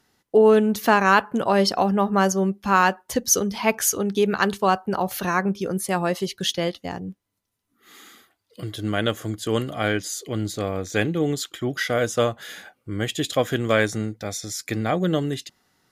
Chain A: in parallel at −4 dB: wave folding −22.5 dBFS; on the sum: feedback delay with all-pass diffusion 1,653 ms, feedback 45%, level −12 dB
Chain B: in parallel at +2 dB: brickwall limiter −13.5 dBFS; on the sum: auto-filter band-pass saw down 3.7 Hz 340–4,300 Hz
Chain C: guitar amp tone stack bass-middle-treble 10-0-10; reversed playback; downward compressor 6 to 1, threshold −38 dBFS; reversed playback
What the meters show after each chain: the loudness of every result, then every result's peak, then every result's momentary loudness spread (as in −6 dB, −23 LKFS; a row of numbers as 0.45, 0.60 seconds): −21.5, −25.5, −41.5 LKFS; −4.0, −5.5, −22.5 dBFS; 13, 15, 7 LU